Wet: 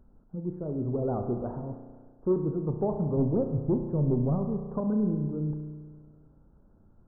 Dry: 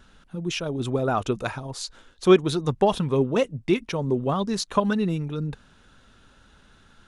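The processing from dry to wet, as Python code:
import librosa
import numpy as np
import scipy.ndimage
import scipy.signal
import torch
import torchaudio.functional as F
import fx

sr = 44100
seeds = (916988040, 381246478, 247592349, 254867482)

y = fx.zero_step(x, sr, step_db=-36.5, at=(0.99, 1.76))
y = fx.low_shelf(y, sr, hz=200.0, db=12.0, at=(3.17, 4.36))
y = 10.0 ** (-16.0 / 20.0) * np.tanh(y / 10.0 ** (-16.0 / 20.0))
y = scipy.ndimage.gaussian_filter1d(y, 11.0, mode='constant')
y = fx.rev_spring(y, sr, rt60_s=1.6, pass_ms=(33,), chirp_ms=50, drr_db=5.5)
y = y * librosa.db_to_amplitude(-3.0)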